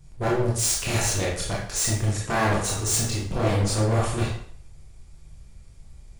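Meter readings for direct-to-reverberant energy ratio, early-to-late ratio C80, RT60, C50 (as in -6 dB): -4.5 dB, 7.0 dB, 0.60 s, 2.5 dB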